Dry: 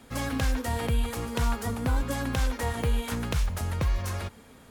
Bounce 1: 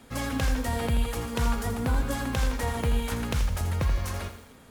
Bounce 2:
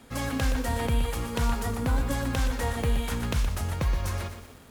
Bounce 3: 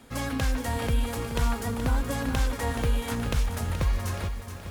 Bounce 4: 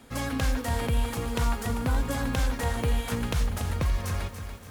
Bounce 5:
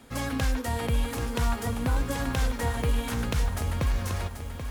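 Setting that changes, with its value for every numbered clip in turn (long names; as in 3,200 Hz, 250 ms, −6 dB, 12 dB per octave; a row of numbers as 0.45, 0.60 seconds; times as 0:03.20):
feedback echo at a low word length, delay time: 82, 121, 425, 286, 784 milliseconds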